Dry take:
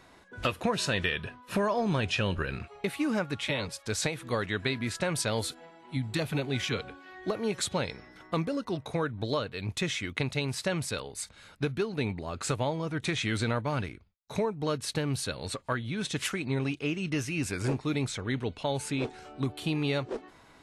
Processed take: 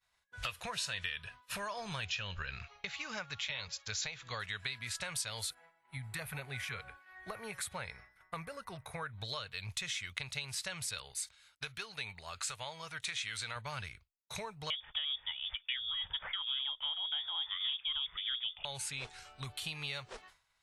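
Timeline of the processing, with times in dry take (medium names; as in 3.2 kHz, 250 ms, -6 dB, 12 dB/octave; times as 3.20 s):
2.05–4.40 s: brick-wall FIR low-pass 7.4 kHz
5.50–9.12 s: high-order bell 4.6 kHz -11.5 dB
11.13–13.56 s: bass shelf 380 Hz -8.5 dB
14.70–18.65 s: frequency inversion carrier 3.5 kHz
whole clip: expander -44 dBFS; amplifier tone stack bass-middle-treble 10-0-10; compression 2.5:1, threshold -43 dBFS; trim +4.5 dB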